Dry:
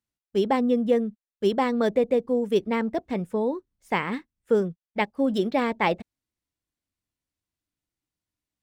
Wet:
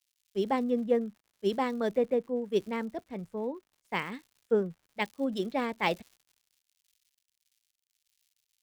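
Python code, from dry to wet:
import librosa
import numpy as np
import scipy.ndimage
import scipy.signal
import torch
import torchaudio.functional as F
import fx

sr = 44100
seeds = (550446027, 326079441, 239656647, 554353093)

y = fx.dmg_crackle(x, sr, seeds[0], per_s=170.0, level_db=-36.0)
y = fx.band_widen(y, sr, depth_pct=100)
y = y * librosa.db_to_amplitude(-7.5)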